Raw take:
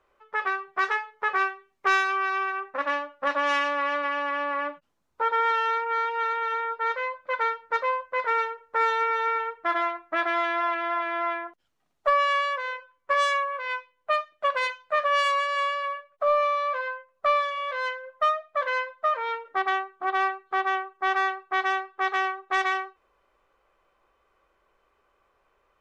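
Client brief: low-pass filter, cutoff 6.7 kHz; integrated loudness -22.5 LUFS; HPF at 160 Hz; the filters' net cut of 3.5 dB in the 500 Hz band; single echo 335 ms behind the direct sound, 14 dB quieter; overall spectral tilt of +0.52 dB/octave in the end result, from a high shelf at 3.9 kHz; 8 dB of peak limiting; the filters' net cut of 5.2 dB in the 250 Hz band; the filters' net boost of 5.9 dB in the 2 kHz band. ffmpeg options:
-af "highpass=160,lowpass=6700,equalizer=f=250:t=o:g=-6,equalizer=f=500:t=o:g=-3.5,equalizer=f=2000:t=o:g=6,highshelf=f=3900:g=7.5,alimiter=limit=0.158:level=0:latency=1,aecho=1:1:335:0.2,volume=1.41"

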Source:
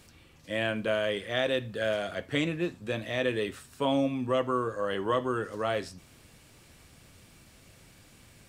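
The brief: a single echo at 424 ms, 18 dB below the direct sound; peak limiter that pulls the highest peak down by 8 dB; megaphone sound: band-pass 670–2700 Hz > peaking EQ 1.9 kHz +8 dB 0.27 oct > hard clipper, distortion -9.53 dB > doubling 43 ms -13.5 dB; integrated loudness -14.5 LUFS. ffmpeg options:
-filter_complex "[0:a]alimiter=limit=0.0708:level=0:latency=1,highpass=670,lowpass=2700,equalizer=f=1900:t=o:w=0.27:g=8,aecho=1:1:424:0.126,asoftclip=type=hard:threshold=0.0188,asplit=2[s0][s1];[s1]adelay=43,volume=0.211[s2];[s0][s2]amix=inputs=2:normalize=0,volume=16.8"

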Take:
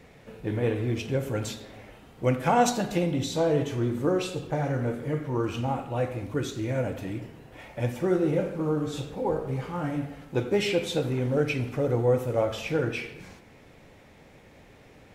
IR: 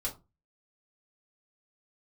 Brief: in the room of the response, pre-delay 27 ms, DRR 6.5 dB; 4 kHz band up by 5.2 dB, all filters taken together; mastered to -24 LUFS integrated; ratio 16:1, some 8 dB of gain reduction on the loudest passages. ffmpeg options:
-filter_complex "[0:a]equalizer=f=4000:t=o:g=6.5,acompressor=threshold=0.0562:ratio=16,asplit=2[s0][s1];[1:a]atrim=start_sample=2205,adelay=27[s2];[s1][s2]afir=irnorm=-1:irlink=0,volume=0.376[s3];[s0][s3]amix=inputs=2:normalize=0,volume=2"

